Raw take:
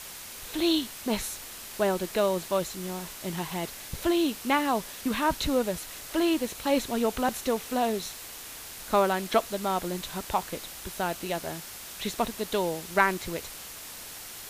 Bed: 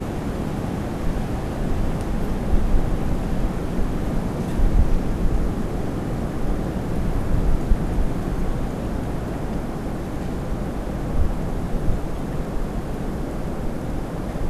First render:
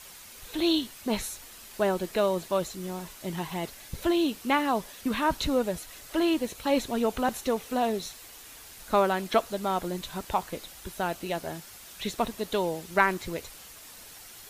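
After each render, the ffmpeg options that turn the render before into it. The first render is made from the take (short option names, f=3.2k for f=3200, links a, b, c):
-af "afftdn=nr=7:nf=-43"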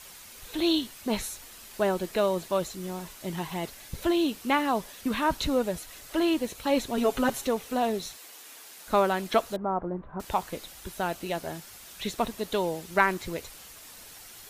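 -filter_complex "[0:a]asettb=1/sr,asplit=3[a][b][c];[a]atrim=end=6.974[d];[b]atrim=start=6.97:end=7.47,asetpts=PTS-STARTPTS,afade=t=in:d=0.004:c=qsin,afade=t=out:st=0.496:d=0.004:c=qsin,aecho=1:1:7.3:0.89,atrim=end_sample=22050[e];[c]atrim=start=7.466[f];[d][e]acrossfade=d=0.004:c1=hsin:c2=qsin[g];[g][f]acrossfade=d=0.004:c1=qsin:c2=hsin,asettb=1/sr,asplit=3[h][i][j];[h]atrim=end=8.164[k];[i]atrim=start=8.16:end=8.87,asetpts=PTS-STARTPTS,afade=t=in:d=0.004:c=qsin,afade=t=out:st=0.706:d=0.004:c=qsin,highpass=280[l];[j]atrim=start=8.866[m];[k][l]acrossfade=d=0.004:c1=hsin:c2=qsin[n];[n][m]acrossfade=d=0.004:c1=qsin:c2=hsin,asettb=1/sr,asplit=3[o][p][q];[o]atrim=end=9.564[r];[p]atrim=start=9.56:end=10.2,asetpts=PTS-STARTPTS,afade=t=in:d=0.004:c=qsin,afade=t=out:st=0.636:d=0.004:c=qsin,lowpass=f=1.3k:w=0.5412,lowpass=f=1.3k:w=1.3066[s];[q]atrim=start=10.196[t];[r][s]acrossfade=d=0.004:c1=hsin:c2=qsin[u];[u][t]acrossfade=d=0.004:c1=qsin:c2=hsin"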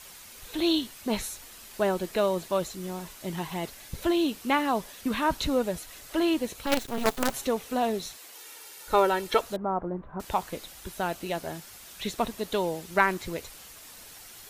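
-filter_complex "[0:a]asettb=1/sr,asplit=3[a][b][c];[a]atrim=end=6.664[d];[b]atrim=start=6.66:end=7.34,asetpts=PTS-STARTPTS,afade=t=in:d=0.004:c=qsin,afade=t=out:st=0.676:d=0.004:c=qsin,acrusher=bits=4:dc=4:mix=0:aa=0.000001[e];[c]atrim=start=7.336[f];[d][e]acrossfade=d=0.004:c1=hsin:c2=qsin[g];[g][f]acrossfade=d=0.004:c1=qsin:c2=hsin,asettb=1/sr,asplit=3[h][i][j];[h]atrim=end=8.354[k];[i]atrim=start=8.35:end=9.41,asetpts=PTS-STARTPTS,afade=t=in:d=0.004:c=qsin,afade=t=out:st=1.056:d=0.004:c=qsin,aecho=1:1:2.2:0.65,atrim=end_sample=46746[l];[j]atrim=start=9.406[m];[k][l]acrossfade=d=0.004:c1=hsin:c2=qsin[n];[n][m]acrossfade=d=0.004:c1=qsin:c2=hsin"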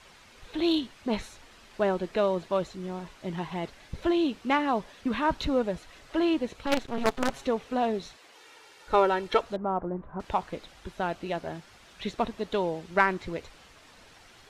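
-af "adynamicsmooth=sensitivity=1:basefreq=4k"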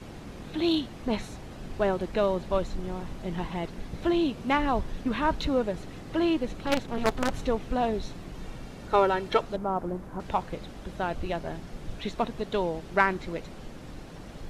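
-filter_complex "[1:a]volume=-16.5dB[a];[0:a][a]amix=inputs=2:normalize=0"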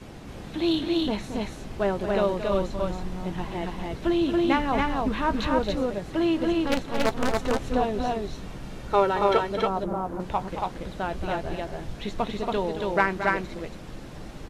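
-filter_complex "[0:a]asplit=2[a][b];[b]adelay=15,volume=-12.5dB[c];[a][c]amix=inputs=2:normalize=0,aecho=1:1:224.5|279.9:0.316|0.794"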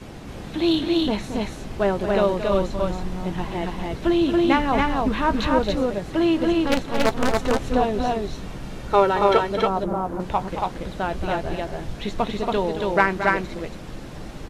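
-af "volume=4dB"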